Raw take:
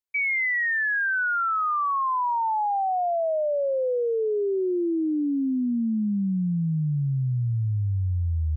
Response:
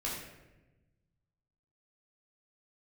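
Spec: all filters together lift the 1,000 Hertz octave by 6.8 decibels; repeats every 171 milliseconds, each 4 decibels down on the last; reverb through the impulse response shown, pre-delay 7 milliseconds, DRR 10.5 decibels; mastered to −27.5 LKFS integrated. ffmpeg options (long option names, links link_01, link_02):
-filter_complex "[0:a]equalizer=frequency=1000:width_type=o:gain=8.5,aecho=1:1:171|342|513|684|855|1026|1197|1368|1539:0.631|0.398|0.25|0.158|0.0994|0.0626|0.0394|0.0249|0.0157,asplit=2[link_01][link_02];[1:a]atrim=start_sample=2205,adelay=7[link_03];[link_02][link_03]afir=irnorm=-1:irlink=0,volume=-14dB[link_04];[link_01][link_04]amix=inputs=2:normalize=0,volume=-9dB"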